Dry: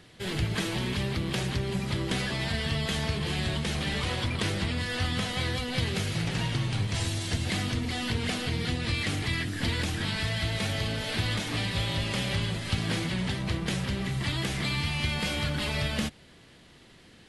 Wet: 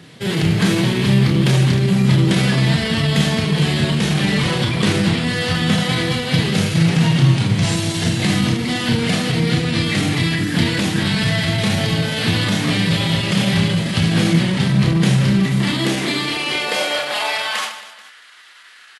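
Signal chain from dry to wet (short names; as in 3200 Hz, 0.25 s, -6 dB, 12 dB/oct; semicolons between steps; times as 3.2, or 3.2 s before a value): high-pass sweep 150 Hz -> 1400 Hz, 13.85–16.41; reverse bouncing-ball echo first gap 30 ms, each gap 1.5×, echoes 5; tempo 0.91×; gain +8.5 dB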